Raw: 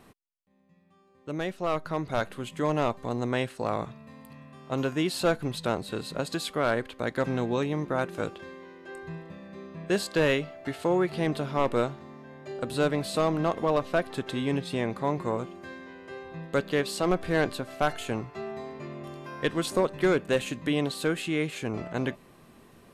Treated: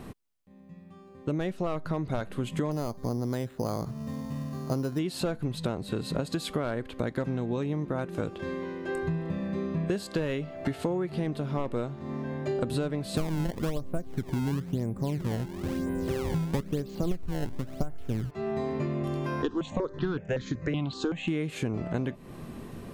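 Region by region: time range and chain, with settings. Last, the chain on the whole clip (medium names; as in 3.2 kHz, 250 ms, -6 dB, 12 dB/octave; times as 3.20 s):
2.71–4.99 s: distance through air 270 m + careless resampling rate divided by 8×, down filtered, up hold
13.17–18.31 s: tilt EQ -3.5 dB/octave + decimation with a swept rate 21×, swing 160% 1 Hz
19.42–21.28 s: steep low-pass 7.2 kHz 72 dB/octave + stepped phaser 5.3 Hz 580–2700 Hz
whole clip: bass shelf 400 Hz +10.5 dB; compression 16:1, threshold -32 dBFS; trim +6 dB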